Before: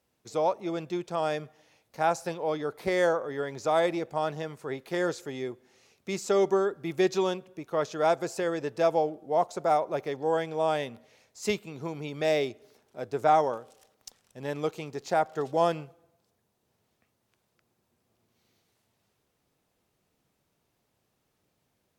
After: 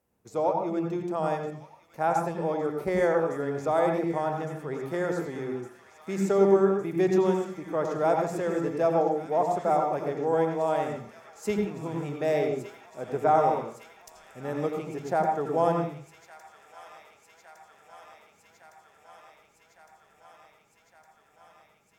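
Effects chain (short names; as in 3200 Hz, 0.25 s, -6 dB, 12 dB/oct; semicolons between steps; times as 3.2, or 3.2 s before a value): bell 4000 Hz -11.5 dB 1.5 oct; thin delay 1.16 s, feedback 78%, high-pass 1900 Hz, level -10 dB; on a send at -3 dB: reverb RT60 0.45 s, pre-delay 77 ms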